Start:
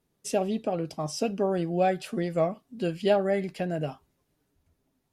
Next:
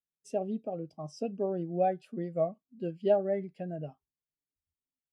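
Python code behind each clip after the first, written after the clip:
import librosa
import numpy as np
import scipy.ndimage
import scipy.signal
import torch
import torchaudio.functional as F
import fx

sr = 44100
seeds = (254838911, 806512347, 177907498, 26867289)

y = fx.spectral_expand(x, sr, expansion=1.5)
y = F.gain(torch.from_numpy(y), -3.5).numpy()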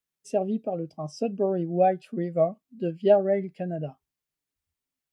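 y = fx.peak_eq(x, sr, hz=2100.0, db=2.0, octaves=0.77)
y = F.gain(torch.from_numpy(y), 6.5).numpy()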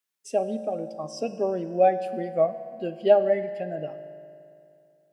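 y = fx.highpass(x, sr, hz=570.0, slope=6)
y = fx.rev_fdn(y, sr, rt60_s=2.6, lf_ratio=1.0, hf_ratio=0.8, size_ms=10.0, drr_db=10.0)
y = F.gain(torch.from_numpy(y), 3.5).numpy()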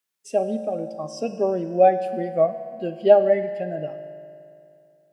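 y = fx.hpss(x, sr, part='harmonic', gain_db=4)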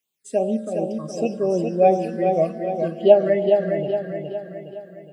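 y = fx.phaser_stages(x, sr, stages=8, low_hz=750.0, high_hz=1800.0, hz=2.7, feedback_pct=15)
y = fx.echo_feedback(y, sr, ms=415, feedback_pct=49, wet_db=-5)
y = F.gain(torch.from_numpy(y), 4.0).numpy()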